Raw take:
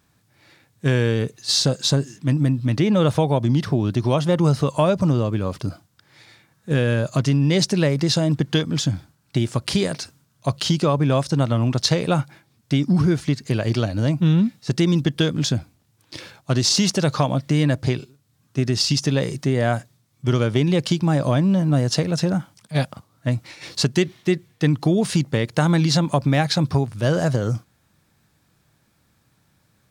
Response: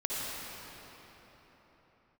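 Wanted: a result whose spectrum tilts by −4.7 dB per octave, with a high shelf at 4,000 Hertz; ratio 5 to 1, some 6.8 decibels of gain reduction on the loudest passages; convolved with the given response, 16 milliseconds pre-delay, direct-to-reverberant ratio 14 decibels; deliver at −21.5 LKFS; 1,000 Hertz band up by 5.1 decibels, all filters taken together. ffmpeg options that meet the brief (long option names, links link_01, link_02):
-filter_complex "[0:a]equalizer=frequency=1000:width_type=o:gain=6,highshelf=frequency=4000:gain=9,acompressor=threshold=-18dB:ratio=5,asplit=2[link_01][link_02];[1:a]atrim=start_sample=2205,adelay=16[link_03];[link_02][link_03]afir=irnorm=-1:irlink=0,volume=-21dB[link_04];[link_01][link_04]amix=inputs=2:normalize=0,volume=2dB"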